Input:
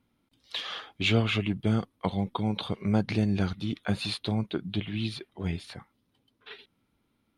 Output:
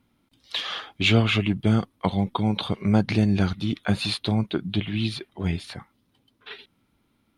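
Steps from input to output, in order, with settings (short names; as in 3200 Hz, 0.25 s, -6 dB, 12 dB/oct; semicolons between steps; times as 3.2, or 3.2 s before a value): bell 470 Hz -2.5 dB 0.42 oct; gain +5.5 dB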